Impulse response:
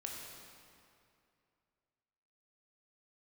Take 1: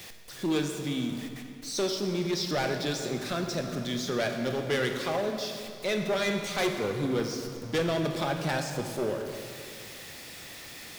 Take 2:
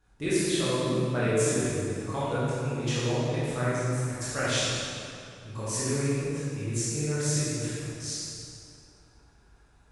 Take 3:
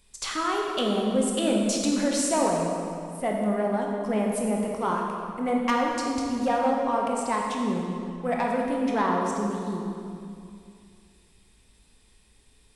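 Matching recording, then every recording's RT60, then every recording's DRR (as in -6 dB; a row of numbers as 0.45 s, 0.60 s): 3; 2.5 s, 2.5 s, 2.5 s; 4.0 dB, -11.0 dB, -1.0 dB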